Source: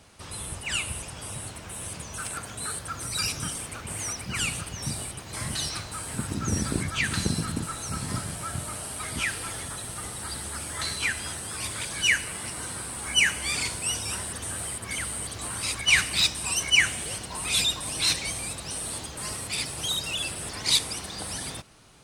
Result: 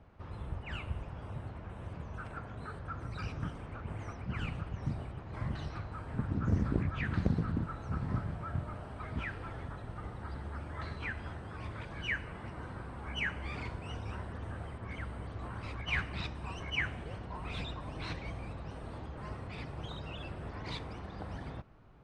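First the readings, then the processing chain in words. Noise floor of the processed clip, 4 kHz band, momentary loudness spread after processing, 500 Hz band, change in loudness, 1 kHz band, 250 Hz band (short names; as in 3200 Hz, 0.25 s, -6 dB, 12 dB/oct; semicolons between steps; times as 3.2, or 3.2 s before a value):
-47 dBFS, -21.0 dB, 10 LU, -4.5 dB, -11.5 dB, -6.5 dB, -3.5 dB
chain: LPF 1400 Hz 12 dB/oct; low shelf 92 Hz +9.5 dB; Doppler distortion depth 0.51 ms; gain -5 dB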